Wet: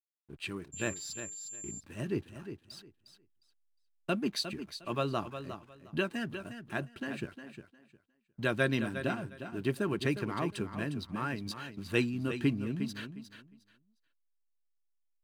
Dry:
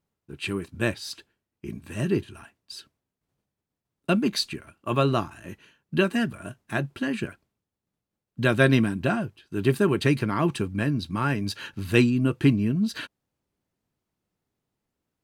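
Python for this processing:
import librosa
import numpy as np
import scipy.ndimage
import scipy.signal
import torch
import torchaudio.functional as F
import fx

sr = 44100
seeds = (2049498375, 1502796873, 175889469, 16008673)

p1 = fx.hpss(x, sr, part='harmonic', gain_db=-5)
p2 = fx.backlash(p1, sr, play_db=-46.0)
p3 = p2 + fx.echo_feedback(p2, sr, ms=357, feedback_pct=20, wet_db=-10.0, dry=0)
p4 = fx.dmg_tone(p3, sr, hz=7300.0, level_db=-34.0, at=(0.72, 1.79), fade=0.02)
y = p4 * librosa.db_to_amplitude(-7.5)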